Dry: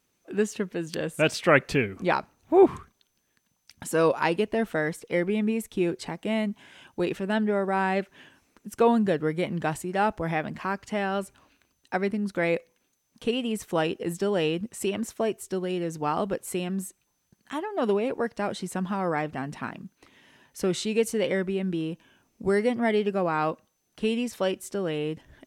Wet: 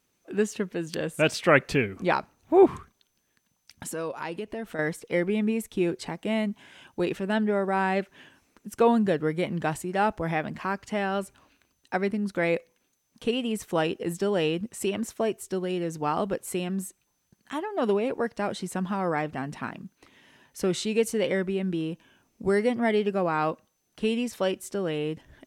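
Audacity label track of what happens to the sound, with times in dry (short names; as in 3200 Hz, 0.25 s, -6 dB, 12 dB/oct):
3.890000	4.790000	compressor 2.5:1, threshold -34 dBFS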